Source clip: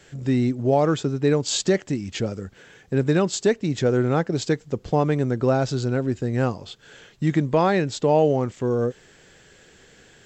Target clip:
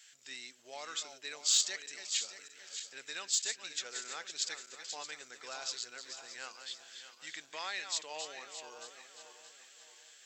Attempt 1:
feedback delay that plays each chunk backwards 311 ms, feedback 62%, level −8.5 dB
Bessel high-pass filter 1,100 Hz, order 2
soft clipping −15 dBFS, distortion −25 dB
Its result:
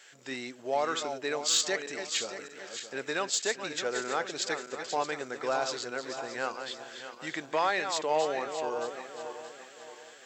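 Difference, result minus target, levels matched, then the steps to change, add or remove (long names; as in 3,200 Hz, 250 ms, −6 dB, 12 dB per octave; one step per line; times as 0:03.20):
1,000 Hz band +11.0 dB
change: Bessel high-pass filter 3,800 Hz, order 2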